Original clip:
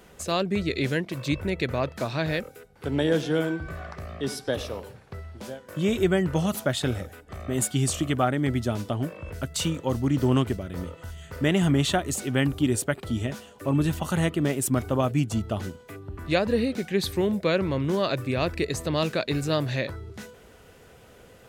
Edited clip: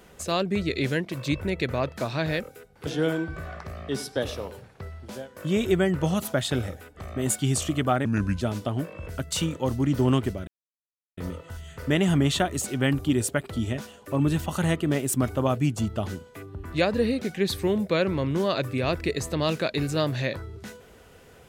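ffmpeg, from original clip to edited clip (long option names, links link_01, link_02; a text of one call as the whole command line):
ffmpeg -i in.wav -filter_complex "[0:a]asplit=5[link_01][link_02][link_03][link_04][link_05];[link_01]atrim=end=2.872[link_06];[link_02]atrim=start=3.188:end=8.374[link_07];[link_03]atrim=start=8.37:end=8.65,asetpts=PTS-STARTPTS,asetrate=33957,aresample=44100,atrim=end_sample=16036,asetpts=PTS-STARTPTS[link_08];[link_04]atrim=start=8.646:end=10.71,asetpts=PTS-STARTPTS,afade=type=out:start_time=2.06:duration=0.004:curve=hsin,apad=pad_dur=0.7[link_09];[link_05]atrim=start=10.71,asetpts=PTS-STARTPTS,afade=type=in:duration=0.004:curve=hsin[link_10];[link_06][link_07]acrossfade=duration=0.004:curve1=hsin:curve2=hsin[link_11];[link_11][link_08]acrossfade=duration=0.004:curve1=hsin:curve2=hsin[link_12];[link_09][link_10]concat=n=2:v=0:a=1[link_13];[link_12][link_13]acrossfade=duration=0.004:curve1=hsin:curve2=hsin" out.wav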